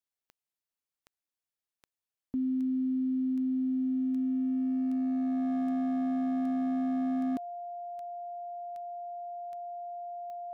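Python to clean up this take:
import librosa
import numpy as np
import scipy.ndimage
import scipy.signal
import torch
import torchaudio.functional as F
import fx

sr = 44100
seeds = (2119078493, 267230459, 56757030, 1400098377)

y = fx.fix_declip(x, sr, threshold_db=-26.5)
y = fx.fix_declick_ar(y, sr, threshold=10.0)
y = fx.notch(y, sr, hz=700.0, q=30.0)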